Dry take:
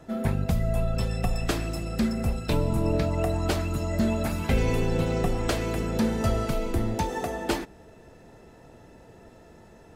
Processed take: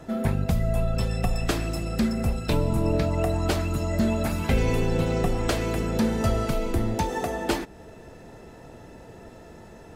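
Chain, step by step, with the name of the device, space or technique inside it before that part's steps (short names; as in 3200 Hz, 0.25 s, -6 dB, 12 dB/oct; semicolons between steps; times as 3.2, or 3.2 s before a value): parallel compression (in parallel at -1.5 dB: compressor, threshold -37 dBFS, peak gain reduction 17.5 dB)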